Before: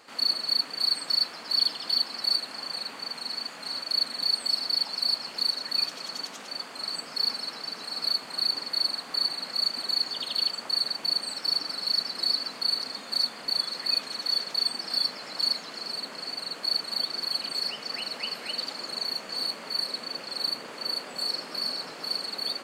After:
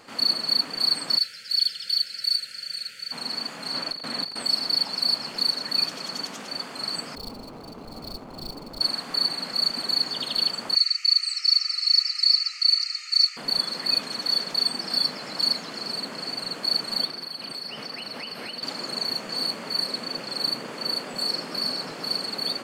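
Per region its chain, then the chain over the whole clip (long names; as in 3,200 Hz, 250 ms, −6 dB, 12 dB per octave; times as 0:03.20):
0:01.18–0:03.12: linear-phase brick-wall band-stop 600–1,300 Hz + guitar amp tone stack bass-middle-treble 10-0-10
0:03.74–0:04.43: high-shelf EQ 5,500 Hz −6.5 dB + compressor whose output falls as the input rises −32 dBFS, ratio −0.5
0:07.15–0:08.81: running median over 25 samples + high-shelf EQ 4,600 Hz −8 dB
0:10.75–0:13.37: linear-phase brick-wall band-pass 1,200–12,000 Hz + high-shelf EQ 2,800 Hz +8 dB + phaser with its sweep stopped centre 2,300 Hz, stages 8
0:17.05–0:18.63: high-pass filter 60 Hz + parametric band 7,100 Hz −11.5 dB 0.22 octaves + downward compressor 5 to 1, threshold −35 dBFS
whole clip: low-shelf EQ 260 Hz +11 dB; notch filter 3,900 Hz, Q 21; level +3 dB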